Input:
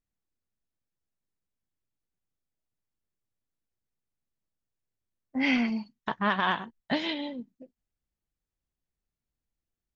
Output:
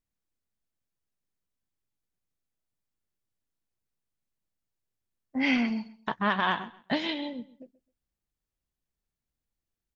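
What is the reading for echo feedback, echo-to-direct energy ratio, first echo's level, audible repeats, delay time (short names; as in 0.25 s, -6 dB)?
26%, -18.5 dB, -19.0 dB, 2, 0.131 s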